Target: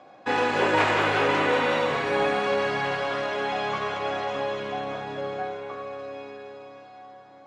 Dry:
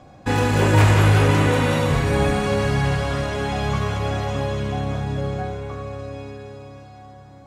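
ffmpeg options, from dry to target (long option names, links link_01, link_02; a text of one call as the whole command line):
ffmpeg -i in.wav -af "highpass=410,lowpass=3900" out.wav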